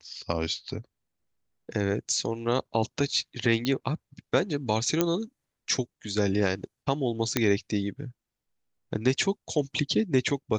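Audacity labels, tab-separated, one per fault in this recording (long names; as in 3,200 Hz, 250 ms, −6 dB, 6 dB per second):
3.650000	3.650000	click −15 dBFS
5.010000	5.010000	click −8 dBFS
7.370000	7.370000	click −7 dBFS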